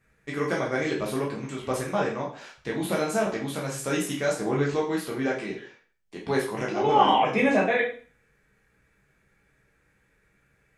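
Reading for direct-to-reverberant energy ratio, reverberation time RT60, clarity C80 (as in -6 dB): -4.0 dB, 0.45 s, 11.5 dB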